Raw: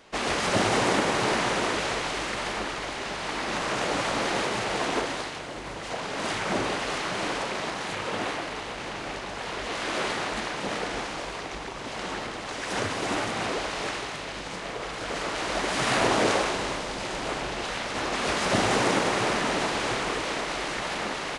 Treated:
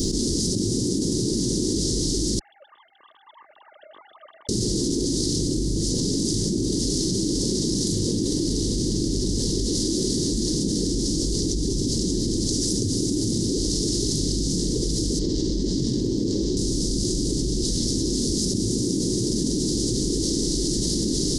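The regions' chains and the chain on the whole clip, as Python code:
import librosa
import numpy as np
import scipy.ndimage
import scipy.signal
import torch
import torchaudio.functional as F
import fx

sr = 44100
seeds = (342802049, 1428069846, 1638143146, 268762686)

y = fx.chain(x, sr, fx.sine_speech(),
    fx.bandpass_q(hz=1200.0, q=15.0), at=(2.39, 4.49))
y = fx.chain(y, sr, fx.air_absorb(metres=130.0),
    fx.doppler_dist(depth_ms=0.25), at=(15.19, 16.57))
y = scipy.signal.sosfilt(scipy.signal.ellip(3, 1.0, 40, [340.0, 5000.0], 'bandstop', fs=sr, output='sos'), y)
y = fx.low_shelf(y, sr, hz=74.0, db=6.0)
y = fx.env_flatten(y, sr, amount_pct=100)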